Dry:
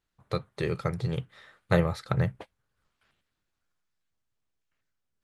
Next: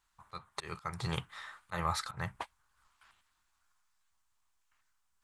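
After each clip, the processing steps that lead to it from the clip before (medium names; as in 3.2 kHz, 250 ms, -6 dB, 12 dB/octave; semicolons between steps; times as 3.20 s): graphic EQ 125/250/500/1000/8000 Hz -10/-6/-12/+11/+7 dB; slow attack 291 ms; trim +3.5 dB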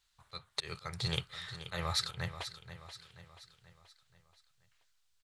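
ten-band graphic EQ 125 Hz +3 dB, 250 Hz -9 dB, 500 Hz +4 dB, 1 kHz -9 dB, 4 kHz +9 dB; feedback delay 481 ms, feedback 50%, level -12 dB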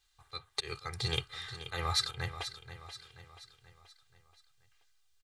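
comb 2.5 ms, depth 73%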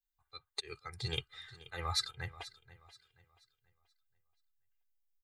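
expander on every frequency bin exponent 1.5; trim -2 dB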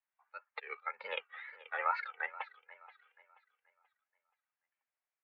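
wow and flutter 140 cents; mistuned SSB +51 Hz 520–2400 Hz; trim +8 dB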